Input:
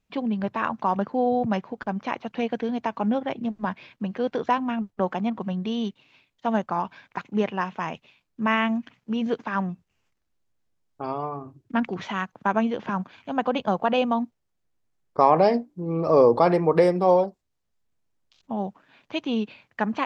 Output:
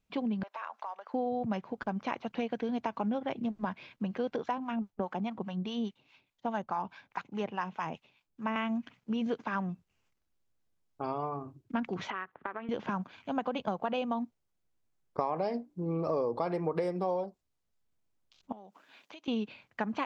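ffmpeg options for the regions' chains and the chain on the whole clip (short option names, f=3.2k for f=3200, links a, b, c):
-filter_complex "[0:a]asettb=1/sr,asplit=3[a][b][c];[a]atrim=end=0.434[d];[b]atrim=start=0.43:end=1.14,asetpts=PTS-STARTPTS,afade=t=in:d=0.004:c=qsin,afade=t=out:st=0.706:d=0.004:c=qsin,acompressor=threshold=-31dB:ratio=6:attack=3.2:release=140:knee=1:detection=peak,highpass=f=610:w=0.5412,highpass=f=610:w=1.3066[e];[c]atrim=start=1.136[f];[d][e]acrossfade=d=0.004:c1=hsin:c2=qsin[g];[g][f]acrossfade=d=0.004:c1=qsin:c2=hsin,asettb=1/sr,asplit=3[h][i][j];[h]atrim=end=4.364[k];[i]atrim=start=4.36:end=8.56,asetpts=PTS-STARTPTS,afade=t=in:d=0.004:c=qsin,afade=t=out:st=4.196:d=0.004:c=qsin,equalizer=f=840:t=o:w=0.24:g=4,acrossover=split=730[l][m];[l]aeval=exprs='val(0)*(1-0.7/2+0.7/2*cos(2*PI*4.8*n/s))':c=same[n];[m]aeval=exprs='val(0)*(1-0.7/2-0.7/2*cos(2*PI*4.8*n/s))':c=same[o];[n][o]amix=inputs=2:normalize=0[p];[j]atrim=start=8.556[q];[k][p]acrossfade=d=0.004:c1=hsin:c2=qsin[r];[r][q]acrossfade=d=0.004:c1=qsin:c2=hsin,asettb=1/sr,asplit=3[s][t][u];[s]atrim=end=12.104[v];[t]atrim=start=12.1:end=12.69,asetpts=PTS-STARTPTS,afade=t=in:d=0.004:c=qsin,afade=t=out:st=0.586:d=0.004:c=qsin,aeval=exprs='if(lt(val(0),0),0.447*val(0),val(0))':c=same,acompressor=threshold=-30dB:ratio=16:attack=3.2:release=140:knee=1:detection=peak,highpass=100,equalizer=f=130:t=q:w=4:g=-9,equalizer=f=200:t=q:w=4:g=-9,equalizer=f=390:t=q:w=4:g=4,equalizer=f=1.2k:t=q:w=4:g=8,equalizer=f=1.8k:t=q:w=4:g=10,lowpass=f=3.1k:w=0.5412,lowpass=f=3.1k:w=1.3066[w];[u]atrim=start=12.686[x];[v][w]acrossfade=d=0.004:c1=hsin:c2=qsin[y];[y][x]acrossfade=d=0.004:c1=qsin:c2=hsin,asettb=1/sr,asplit=3[z][aa][ab];[z]atrim=end=18.524[ac];[aa]atrim=start=18.52:end=19.28,asetpts=PTS-STARTPTS,afade=t=in:d=0.004:c=qsin,afade=t=out:st=0.756:d=0.004:c=qsin,highpass=270,highshelf=f=3.6k:g=9.5,acompressor=threshold=-43dB:ratio=8:attack=3.2:release=140:knee=1:detection=peak[ad];[ab]atrim=start=19.276[ae];[ac][ad]acrossfade=d=0.004:c1=hsin:c2=qsin[af];[af][ae]acrossfade=d=0.004:c1=qsin:c2=hsin,bandreject=f=1.8k:w=21,acompressor=threshold=-25dB:ratio=6,volume=-3.5dB"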